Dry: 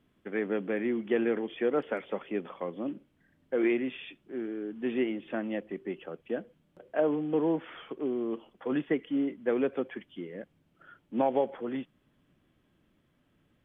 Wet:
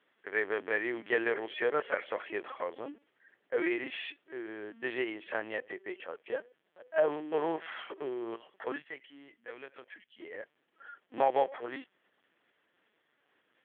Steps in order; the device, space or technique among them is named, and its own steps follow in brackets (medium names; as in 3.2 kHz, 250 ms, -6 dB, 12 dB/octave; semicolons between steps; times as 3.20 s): 8.76–10.22 s: FFT filter 140 Hz 0 dB, 300 Hz -19 dB, 1.6 kHz -12 dB, 2.8 kHz -8 dB; talking toy (LPC vocoder at 8 kHz pitch kept; high-pass 560 Hz 12 dB/octave; peaking EQ 1.8 kHz +6.5 dB 0.37 oct); trim +3 dB